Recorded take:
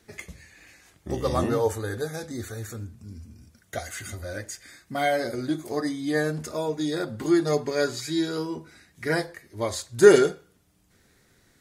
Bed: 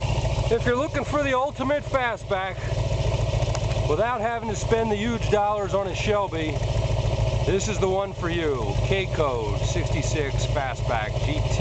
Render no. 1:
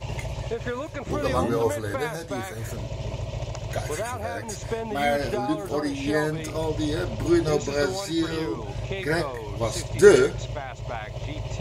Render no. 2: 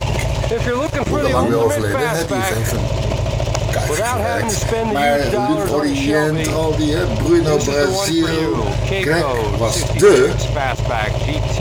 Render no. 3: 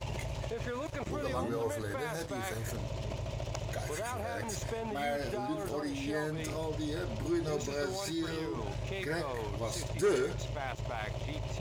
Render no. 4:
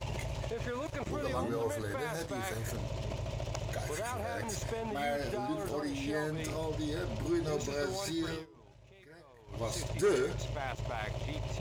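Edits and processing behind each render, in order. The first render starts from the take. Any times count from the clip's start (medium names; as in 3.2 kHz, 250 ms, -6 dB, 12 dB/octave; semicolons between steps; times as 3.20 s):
add bed -8 dB
waveshaping leveller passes 2; in parallel at +1 dB: compressor with a negative ratio -28 dBFS, ratio -1
trim -19 dB
8.32–9.61 s: dip -20.5 dB, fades 0.14 s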